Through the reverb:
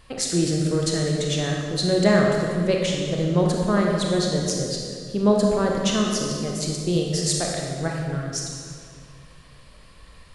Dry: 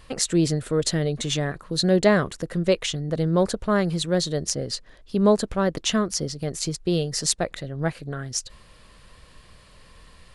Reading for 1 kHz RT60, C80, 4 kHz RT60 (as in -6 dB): 2.0 s, 2.5 dB, 1.6 s